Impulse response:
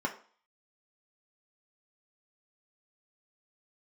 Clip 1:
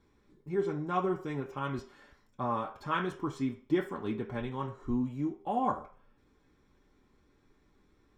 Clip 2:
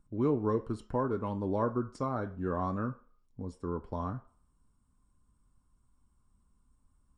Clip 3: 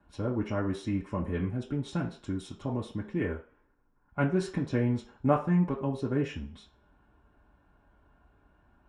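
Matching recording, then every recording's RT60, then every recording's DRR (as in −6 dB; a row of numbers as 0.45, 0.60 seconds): 1; 0.45, 0.45, 0.45 seconds; 0.0, 5.0, −5.0 decibels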